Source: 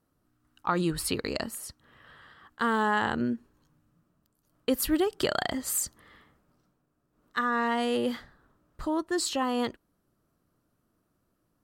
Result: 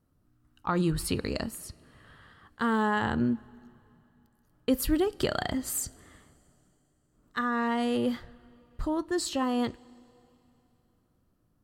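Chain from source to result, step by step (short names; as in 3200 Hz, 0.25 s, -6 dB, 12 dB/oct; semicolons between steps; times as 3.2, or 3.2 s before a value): low shelf 210 Hz +11.5 dB; reverb, pre-delay 3 ms, DRR 15.5 dB; gain -3 dB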